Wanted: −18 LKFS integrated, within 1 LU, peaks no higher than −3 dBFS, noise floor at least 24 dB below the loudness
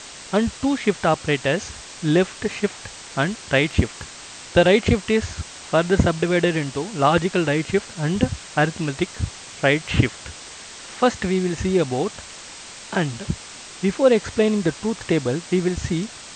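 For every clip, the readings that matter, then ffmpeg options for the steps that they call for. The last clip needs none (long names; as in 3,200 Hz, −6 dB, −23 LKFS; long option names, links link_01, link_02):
background noise floor −39 dBFS; target noise floor −46 dBFS; integrated loudness −21.5 LKFS; sample peak −3.5 dBFS; target loudness −18.0 LKFS
→ -af "afftdn=noise_reduction=7:noise_floor=-39"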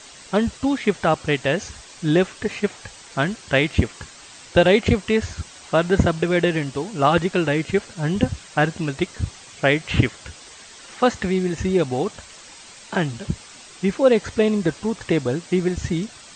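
background noise floor −44 dBFS; target noise floor −46 dBFS
→ -af "afftdn=noise_reduction=6:noise_floor=-44"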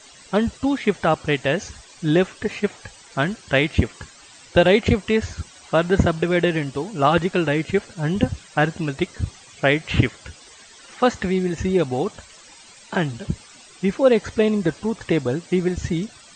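background noise floor −47 dBFS; integrated loudness −22.0 LKFS; sample peak −3.5 dBFS; target loudness −18.0 LKFS
→ -af "volume=4dB,alimiter=limit=-3dB:level=0:latency=1"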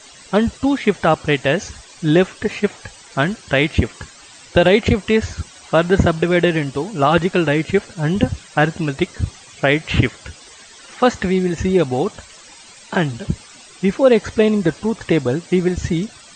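integrated loudness −18.5 LKFS; sample peak −3.0 dBFS; background noise floor −43 dBFS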